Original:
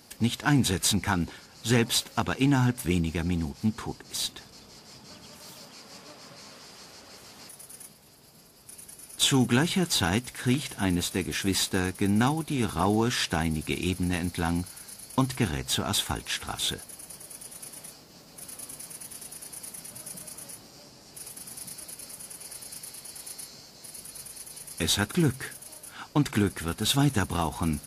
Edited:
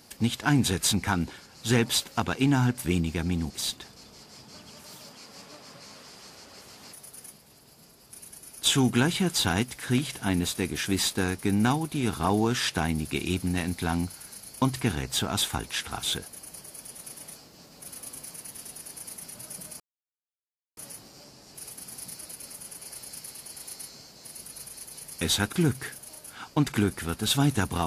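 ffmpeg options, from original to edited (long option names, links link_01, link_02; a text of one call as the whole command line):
ffmpeg -i in.wav -filter_complex "[0:a]asplit=3[link_01][link_02][link_03];[link_01]atrim=end=3.502[link_04];[link_02]atrim=start=4.058:end=20.36,asetpts=PTS-STARTPTS,afade=type=out:start_time=16.298:duration=0.004:curve=hsin,apad=pad_dur=0.97[link_05];[link_03]atrim=start=20.36,asetpts=PTS-STARTPTS,afade=type=in:duration=0.004:curve=hsin[link_06];[link_05][link_06]concat=n=2:v=0:a=1[link_07];[link_04][link_07]acrossfade=duration=0.004:curve1=hsin:curve2=hsin" out.wav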